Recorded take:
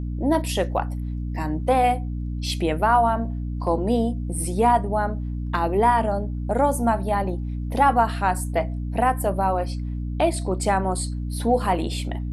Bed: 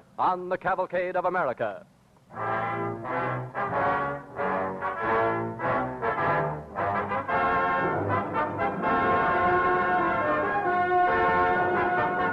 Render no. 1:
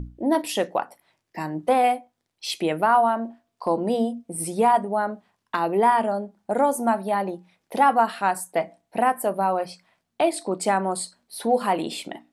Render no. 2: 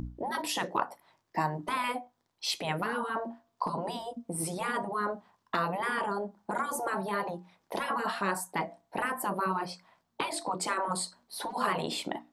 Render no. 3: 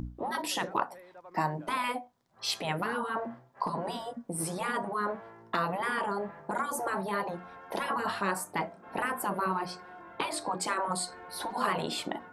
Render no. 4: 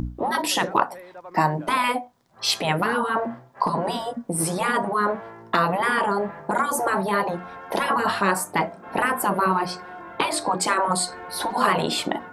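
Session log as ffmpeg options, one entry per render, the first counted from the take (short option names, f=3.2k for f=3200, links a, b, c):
-af "bandreject=f=60:t=h:w=6,bandreject=f=120:t=h:w=6,bandreject=f=180:t=h:w=6,bandreject=f=240:t=h:w=6,bandreject=f=300:t=h:w=6"
-af "afftfilt=real='re*lt(hypot(re,im),0.224)':imag='im*lt(hypot(re,im),0.224)':win_size=1024:overlap=0.75,equalizer=f=1k:t=o:w=0.67:g=7,equalizer=f=2.5k:t=o:w=0.67:g=-4,equalizer=f=10k:t=o:w=0.67:g=-6"
-filter_complex "[1:a]volume=-24.5dB[a];[0:a][a]amix=inputs=2:normalize=0"
-af "volume=9.5dB"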